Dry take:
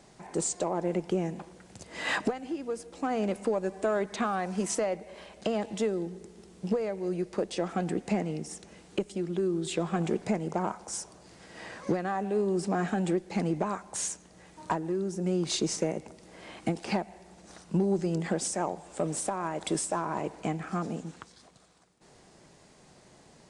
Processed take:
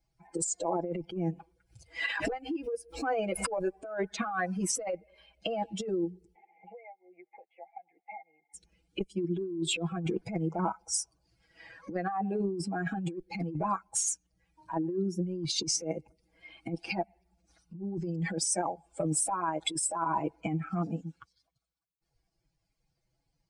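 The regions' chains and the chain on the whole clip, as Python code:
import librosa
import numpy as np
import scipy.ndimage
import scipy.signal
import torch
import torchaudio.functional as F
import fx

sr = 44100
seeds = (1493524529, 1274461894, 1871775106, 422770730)

y = fx.chain(x, sr, fx.peak_eq(hz=220.0, db=-6.5, octaves=0.59),
    fx.pre_swell(db_per_s=110.0), at=(1.31, 3.81))
y = fx.chain(y, sr, fx.double_bandpass(hz=1300.0, octaves=1.4),
    fx.air_absorb(metres=340.0),
    fx.band_squash(depth_pct=100), at=(6.35, 8.54))
y = fx.bin_expand(y, sr, power=2.0)
y = y + 0.95 * np.pad(y, (int(6.1 * sr / 1000.0), 0))[:len(y)]
y = fx.over_compress(y, sr, threshold_db=-37.0, ratio=-1.0)
y = y * librosa.db_to_amplitude(5.0)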